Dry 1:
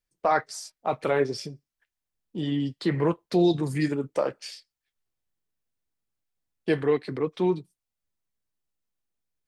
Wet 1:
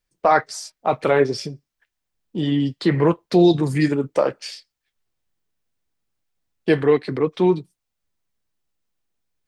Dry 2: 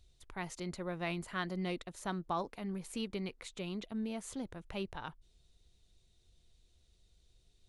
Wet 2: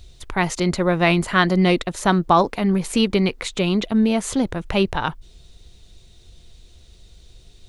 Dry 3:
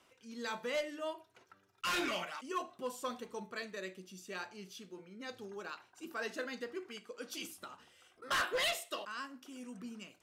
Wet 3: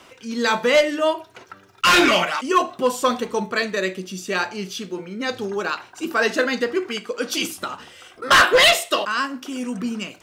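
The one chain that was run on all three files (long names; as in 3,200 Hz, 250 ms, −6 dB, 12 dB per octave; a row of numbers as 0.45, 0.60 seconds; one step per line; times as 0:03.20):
parametric band 12,000 Hz −4.5 dB 1.1 octaves
loudness normalisation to −20 LKFS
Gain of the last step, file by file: +7.0, +20.5, +20.5 decibels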